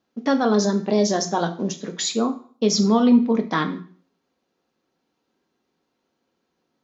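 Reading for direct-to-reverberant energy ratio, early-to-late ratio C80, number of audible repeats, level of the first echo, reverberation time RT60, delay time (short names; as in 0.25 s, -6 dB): 5.0 dB, 17.0 dB, none, none, 0.50 s, none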